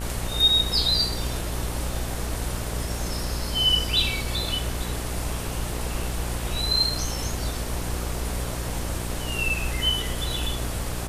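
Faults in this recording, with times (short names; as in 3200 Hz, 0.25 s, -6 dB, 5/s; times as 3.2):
buzz 60 Hz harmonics 31 -31 dBFS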